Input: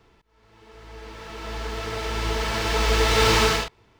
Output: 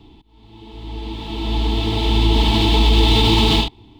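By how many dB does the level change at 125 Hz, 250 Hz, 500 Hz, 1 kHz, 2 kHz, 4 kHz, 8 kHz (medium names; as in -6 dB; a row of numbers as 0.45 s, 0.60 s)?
+10.5 dB, +13.0 dB, +1.0 dB, +2.5 dB, -2.0 dB, +8.0 dB, -5.0 dB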